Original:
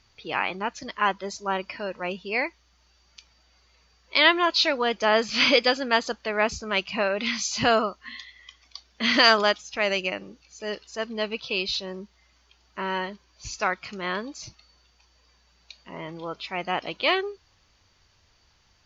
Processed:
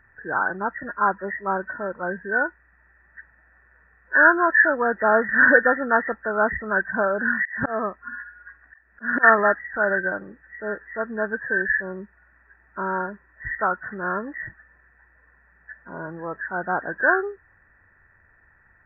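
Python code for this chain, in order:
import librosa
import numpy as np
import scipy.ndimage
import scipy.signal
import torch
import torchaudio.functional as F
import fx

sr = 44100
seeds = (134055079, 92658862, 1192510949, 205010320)

y = fx.freq_compress(x, sr, knee_hz=1300.0, ratio=4.0)
y = fx.auto_swell(y, sr, attack_ms=231.0, at=(7.27, 9.23), fade=0.02)
y = y * 10.0 ** (2.5 / 20.0)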